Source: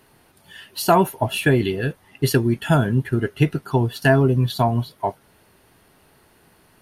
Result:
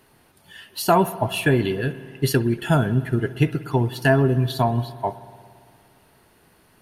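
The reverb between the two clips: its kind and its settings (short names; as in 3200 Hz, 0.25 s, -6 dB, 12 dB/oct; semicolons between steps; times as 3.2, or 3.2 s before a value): spring tank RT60 2.1 s, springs 57 ms, chirp 70 ms, DRR 14.5 dB; gain -1.5 dB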